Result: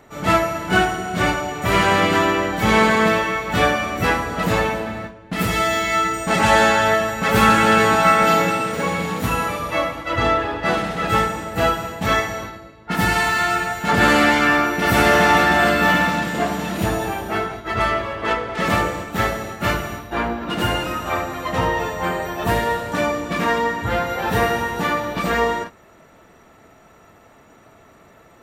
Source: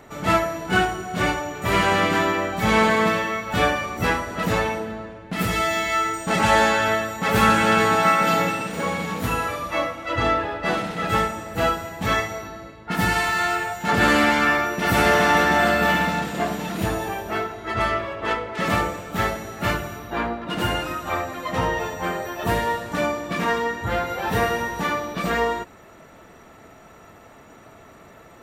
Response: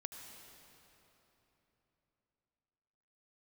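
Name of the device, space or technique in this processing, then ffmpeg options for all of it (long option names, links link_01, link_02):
keyed gated reverb: -filter_complex "[0:a]asplit=3[link_01][link_02][link_03];[1:a]atrim=start_sample=2205[link_04];[link_02][link_04]afir=irnorm=-1:irlink=0[link_05];[link_03]apad=whole_len=1253561[link_06];[link_05][link_06]sidechaingate=range=-33dB:threshold=-34dB:ratio=16:detection=peak,volume=2.5dB[link_07];[link_01][link_07]amix=inputs=2:normalize=0,volume=-2.5dB"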